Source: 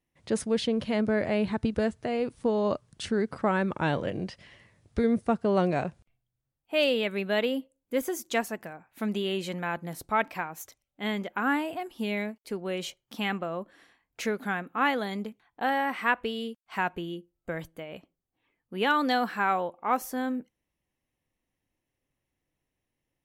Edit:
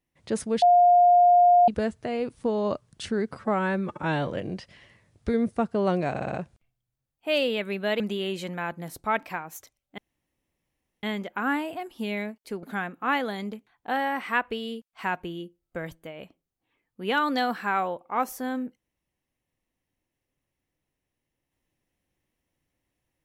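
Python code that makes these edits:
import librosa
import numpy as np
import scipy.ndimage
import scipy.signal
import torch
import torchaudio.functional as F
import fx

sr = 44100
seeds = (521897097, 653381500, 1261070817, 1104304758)

y = fx.edit(x, sr, fx.bleep(start_s=0.62, length_s=1.06, hz=708.0, db=-13.5),
    fx.stretch_span(start_s=3.37, length_s=0.6, factor=1.5),
    fx.stutter(start_s=5.8, slice_s=0.06, count=5),
    fx.cut(start_s=7.46, length_s=1.59),
    fx.insert_room_tone(at_s=11.03, length_s=1.05),
    fx.cut(start_s=12.63, length_s=1.73), tone=tone)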